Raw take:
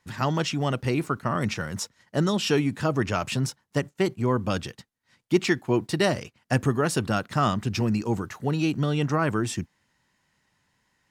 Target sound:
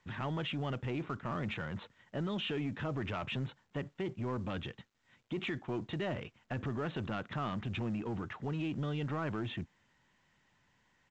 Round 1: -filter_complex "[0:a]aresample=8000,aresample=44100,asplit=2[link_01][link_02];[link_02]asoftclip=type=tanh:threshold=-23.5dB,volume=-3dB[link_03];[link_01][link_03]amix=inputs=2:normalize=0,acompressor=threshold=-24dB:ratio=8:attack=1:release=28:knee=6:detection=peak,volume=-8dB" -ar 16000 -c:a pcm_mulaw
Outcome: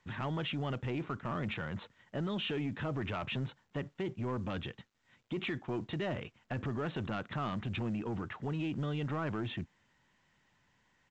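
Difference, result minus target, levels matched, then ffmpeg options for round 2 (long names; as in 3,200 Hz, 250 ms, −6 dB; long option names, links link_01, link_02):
soft clipping: distortion −6 dB
-filter_complex "[0:a]aresample=8000,aresample=44100,asplit=2[link_01][link_02];[link_02]asoftclip=type=tanh:threshold=-35dB,volume=-3dB[link_03];[link_01][link_03]amix=inputs=2:normalize=0,acompressor=threshold=-24dB:ratio=8:attack=1:release=28:knee=6:detection=peak,volume=-8dB" -ar 16000 -c:a pcm_mulaw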